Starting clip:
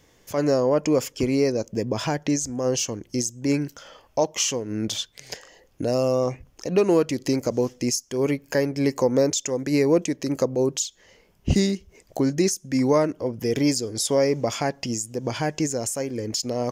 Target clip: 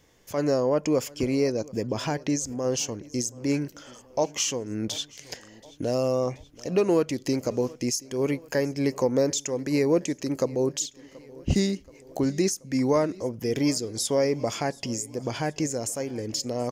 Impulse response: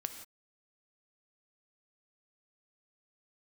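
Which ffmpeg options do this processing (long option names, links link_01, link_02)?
-af "aecho=1:1:729|1458|2187|2916:0.075|0.042|0.0235|0.0132,volume=-3dB"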